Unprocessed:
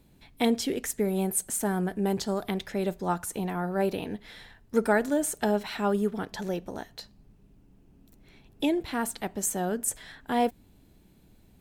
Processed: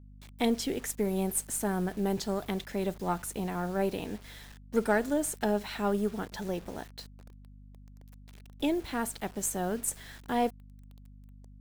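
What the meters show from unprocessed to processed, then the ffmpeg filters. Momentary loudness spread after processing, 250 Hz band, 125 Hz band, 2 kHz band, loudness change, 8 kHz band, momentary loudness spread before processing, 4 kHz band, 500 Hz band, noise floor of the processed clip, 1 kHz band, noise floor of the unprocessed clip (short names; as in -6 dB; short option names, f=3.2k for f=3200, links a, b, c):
11 LU, -2.5 dB, -2.0 dB, -3.0 dB, -3.0 dB, -3.0 dB, 10 LU, -3.0 dB, -3.0 dB, -51 dBFS, -3.0 dB, -59 dBFS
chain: -af "acrusher=bits=7:mix=0:aa=0.000001,aeval=exprs='val(0)+0.00447*(sin(2*PI*50*n/s)+sin(2*PI*2*50*n/s)/2+sin(2*PI*3*50*n/s)/3+sin(2*PI*4*50*n/s)/4+sin(2*PI*5*50*n/s)/5)':c=same,aeval=exprs='0.299*(cos(1*acos(clip(val(0)/0.299,-1,1)))-cos(1*PI/2))+0.00668*(cos(8*acos(clip(val(0)/0.299,-1,1)))-cos(8*PI/2))':c=same,volume=-3dB"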